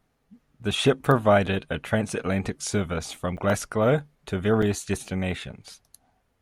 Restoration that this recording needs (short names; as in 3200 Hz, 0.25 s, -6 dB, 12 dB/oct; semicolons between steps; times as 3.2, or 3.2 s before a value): interpolate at 3.37/4.62, 4.9 ms